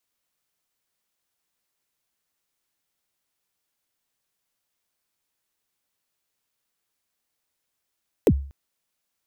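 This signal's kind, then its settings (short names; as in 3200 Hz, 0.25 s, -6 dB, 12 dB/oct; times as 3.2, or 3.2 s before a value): kick drum length 0.24 s, from 540 Hz, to 69 Hz, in 58 ms, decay 0.45 s, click on, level -10 dB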